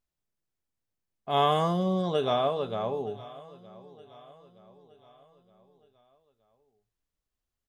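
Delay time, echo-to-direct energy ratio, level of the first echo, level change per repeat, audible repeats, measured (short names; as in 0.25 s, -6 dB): 0.919 s, -19.0 dB, -20.0 dB, -6.5 dB, 3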